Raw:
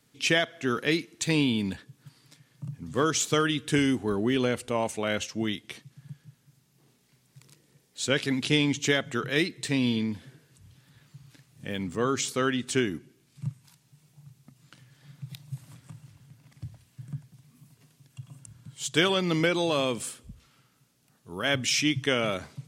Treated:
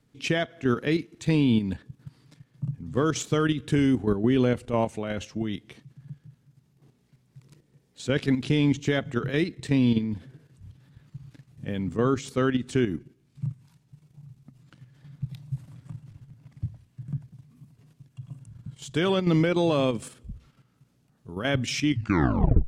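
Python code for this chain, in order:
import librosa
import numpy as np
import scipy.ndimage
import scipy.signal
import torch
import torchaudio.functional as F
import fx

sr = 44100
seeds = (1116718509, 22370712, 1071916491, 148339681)

y = fx.tape_stop_end(x, sr, length_s=0.79)
y = fx.level_steps(y, sr, step_db=9)
y = fx.tilt_eq(y, sr, slope=-2.5)
y = y * 10.0 ** (2.0 / 20.0)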